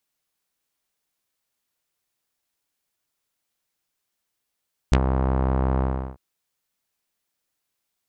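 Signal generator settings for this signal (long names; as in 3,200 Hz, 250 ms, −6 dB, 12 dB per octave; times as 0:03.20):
subtractive voice saw C2 12 dB per octave, low-pass 1,000 Hz, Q 1.5, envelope 4 octaves, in 0.05 s, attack 2.1 ms, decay 0.07 s, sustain −8 dB, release 0.37 s, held 0.88 s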